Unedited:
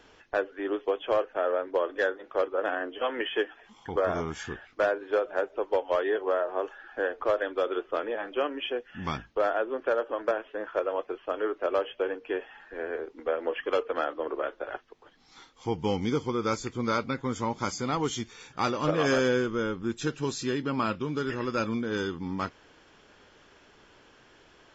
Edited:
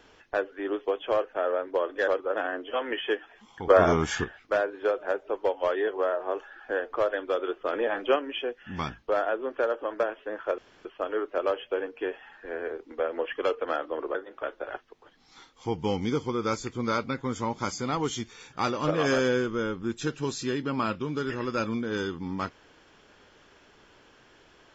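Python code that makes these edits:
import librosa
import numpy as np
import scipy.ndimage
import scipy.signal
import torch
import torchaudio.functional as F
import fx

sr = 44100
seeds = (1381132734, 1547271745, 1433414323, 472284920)

y = fx.edit(x, sr, fx.move(start_s=2.08, length_s=0.28, to_s=14.43),
    fx.clip_gain(start_s=3.98, length_s=0.54, db=8.5),
    fx.clip_gain(start_s=8.01, length_s=0.43, db=5.0),
    fx.room_tone_fill(start_s=10.86, length_s=0.27), tone=tone)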